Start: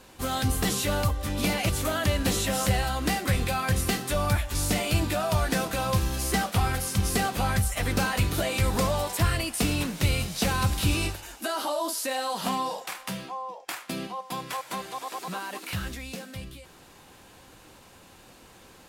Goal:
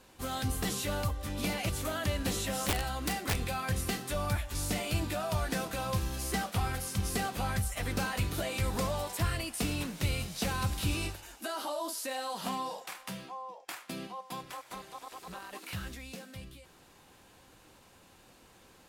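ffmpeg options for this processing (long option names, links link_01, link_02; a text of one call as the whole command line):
ffmpeg -i in.wav -filter_complex "[0:a]asettb=1/sr,asplit=3[link_01][link_02][link_03];[link_01]atrim=end=2.474[link_04];[link_02]atrim=start=2.47:end=3.43,asetpts=PTS-STARTPTS,afade=type=in:duration=0.004:curve=qsin,afade=type=out:start_time=0.956:duration=0.004:curve=qsin,aeval=exprs='(mod(6.31*val(0)+1,2)-1)/6.31':channel_layout=same[link_05];[link_03]atrim=start=3.426[link_06];[link_04][link_05]acrossfade=duration=0.004:curve1=hsin:curve2=qsin[link_07];[link_07][link_06]acrossfade=duration=0.004:curve1=qsin:curve2=hsin,asplit=3[link_08][link_09][link_10];[link_08]afade=type=out:start_time=14.41:duration=0.02[link_11];[link_09]tremolo=f=240:d=0.75,afade=type=in:start_time=14.41:duration=0.02,afade=type=out:start_time=15.52:duration=0.02[link_12];[link_10]afade=type=in:start_time=15.52:duration=0.02[link_13];[link_11][link_12][link_13]amix=inputs=3:normalize=0,volume=-7dB" out.wav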